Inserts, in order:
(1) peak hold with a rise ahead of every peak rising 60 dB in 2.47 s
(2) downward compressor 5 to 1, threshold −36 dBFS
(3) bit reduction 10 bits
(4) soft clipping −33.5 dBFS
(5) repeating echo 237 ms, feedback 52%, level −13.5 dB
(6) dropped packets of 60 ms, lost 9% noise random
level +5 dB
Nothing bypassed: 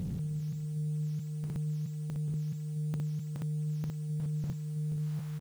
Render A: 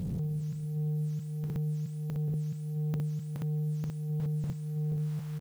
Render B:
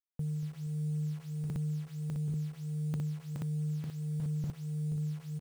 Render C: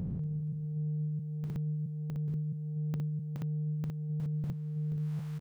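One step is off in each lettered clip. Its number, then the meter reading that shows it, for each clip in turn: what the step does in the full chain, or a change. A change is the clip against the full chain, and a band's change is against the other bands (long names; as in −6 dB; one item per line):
2, average gain reduction 2.5 dB
1, change in momentary loudness spread +1 LU
3, distortion level −27 dB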